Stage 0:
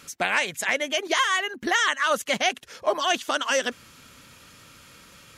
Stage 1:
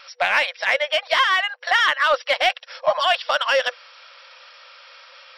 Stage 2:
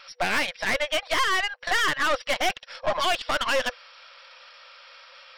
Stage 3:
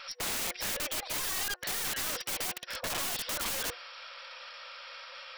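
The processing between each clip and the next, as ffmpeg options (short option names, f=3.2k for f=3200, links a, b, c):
-filter_complex "[0:a]afftfilt=real='re*between(b*sr/4096,490,5700)':imag='im*between(b*sr/4096,490,5700)':win_size=4096:overlap=0.75,asplit=2[a][b];[b]asoftclip=type=tanh:threshold=-23dB,volume=-5dB[c];[a][c]amix=inputs=2:normalize=0,volume=2.5dB"
-af "aeval=exprs='(tanh(8.91*val(0)+0.6)-tanh(0.6))/8.91':c=same"
-af "aeval=exprs='(mod(35.5*val(0)+1,2)-1)/35.5':c=same,bandreject=f=360.2:t=h:w=4,bandreject=f=720.4:t=h:w=4,bandreject=f=1.0806k:t=h:w=4,bandreject=f=1.4408k:t=h:w=4,bandreject=f=1.801k:t=h:w=4,volume=2.5dB"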